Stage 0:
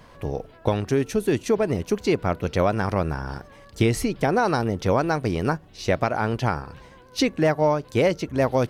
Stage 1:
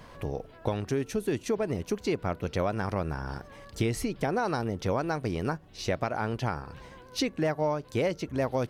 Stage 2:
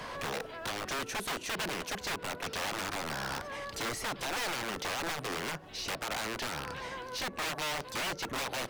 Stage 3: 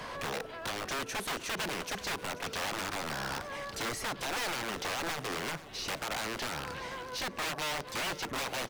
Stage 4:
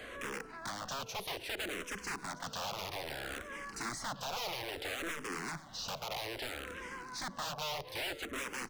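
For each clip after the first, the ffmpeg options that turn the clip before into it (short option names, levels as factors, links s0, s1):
-af "acompressor=threshold=0.0126:ratio=1.5"
-filter_complex "[0:a]acrossover=split=130|1400[s0][s1][s2];[s0]acompressor=threshold=0.00316:ratio=4[s3];[s1]acompressor=threshold=0.0316:ratio=4[s4];[s2]acompressor=threshold=0.00447:ratio=4[s5];[s3][s4][s5]amix=inputs=3:normalize=0,aeval=exprs='(mod(47.3*val(0)+1,2)-1)/47.3':c=same,asplit=2[s6][s7];[s7]highpass=f=720:p=1,volume=5.01,asoftclip=type=tanh:threshold=0.0224[s8];[s6][s8]amix=inputs=2:normalize=0,lowpass=f=7300:p=1,volume=0.501,volume=1.5"
-af "aecho=1:1:486|972|1458|1944:0.141|0.0607|0.0261|0.0112"
-filter_complex "[0:a]asplit=2[s0][s1];[s1]afreqshift=-0.61[s2];[s0][s2]amix=inputs=2:normalize=1,volume=0.841"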